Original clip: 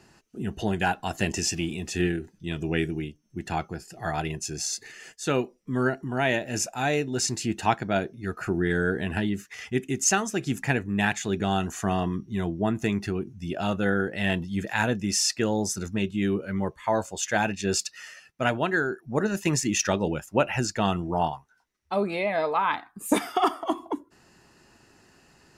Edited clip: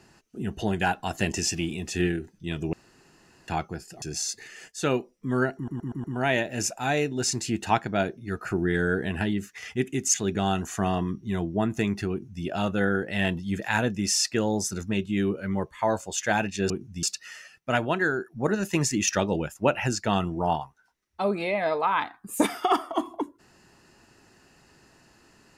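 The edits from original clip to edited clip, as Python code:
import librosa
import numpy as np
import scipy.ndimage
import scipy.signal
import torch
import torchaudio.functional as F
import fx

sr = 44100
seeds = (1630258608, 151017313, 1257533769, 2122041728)

y = fx.edit(x, sr, fx.room_tone_fill(start_s=2.73, length_s=0.75),
    fx.cut(start_s=4.02, length_s=0.44),
    fx.stutter(start_s=6.0, slice_s=0.12, count=5),
    fx.cut(start_s=10.1, length_s=1.09),
    fx.duplicate(start_s=13.16, length_s=0.33, to_s=17.75), tone=tone)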